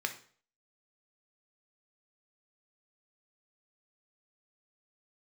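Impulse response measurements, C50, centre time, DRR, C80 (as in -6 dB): 11.5 dB, 10 ms, 5.0 dB, 16.5 dB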